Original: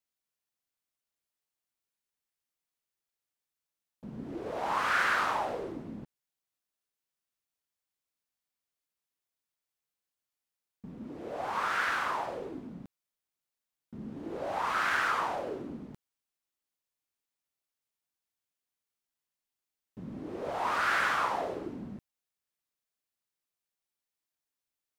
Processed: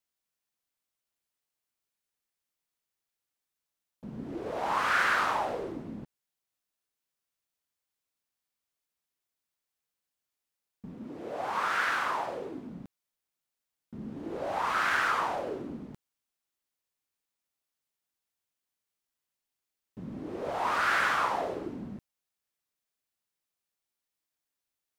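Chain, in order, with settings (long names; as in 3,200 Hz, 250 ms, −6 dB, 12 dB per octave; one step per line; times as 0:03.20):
0:10.93–0:12.67: high-pass filter 110 Hz 6 dB per octave
level +1.5 dB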